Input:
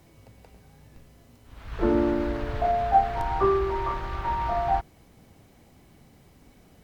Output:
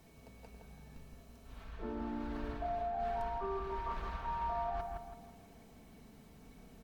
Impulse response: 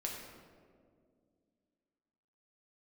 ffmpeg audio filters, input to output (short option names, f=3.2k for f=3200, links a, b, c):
-filter_complex "[0:a]bandreject=f=2k:w=25,areverse,acompressor=threshold=-33dB:ratio=8,areverse,aecho=1:1:4.5:0.51,asplit=2[a][b];[b]adelay=165,lowpass=f=2k:p=1,volume=-3dB,asplit=2[c][d];[d]adelay=165,lowpass=f=2k:p=1,volume=0.45,asplit=2[e][f];[f]adelay=165,lowpass=f=2k:p=1,volume=0.45,asplit=2[g][h];[h]adelay=165,lowpass=f=2k:p=1,volume=0.45,asplit=2[i][j];[j]adelay=165,lowpass=f=2k:p=1,volume=0.45,asplit=2[k][l];[l]adelay=165,lowpass=f=2k:p=1,volume=0.45[m];[a][c][e][g][i][k][m]amix=inputs=7:normalize=0,volume=-5dB"